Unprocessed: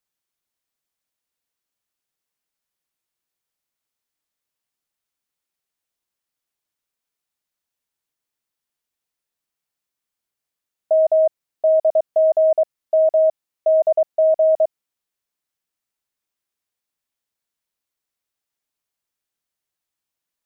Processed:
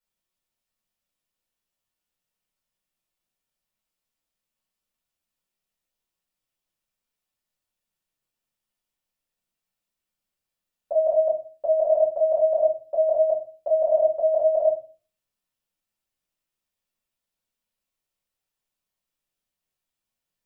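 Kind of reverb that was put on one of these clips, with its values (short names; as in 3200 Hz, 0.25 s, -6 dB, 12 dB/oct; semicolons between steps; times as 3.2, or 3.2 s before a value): shoebox room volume 160 m³, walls furnished, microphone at 4.6 m; gain -10 dB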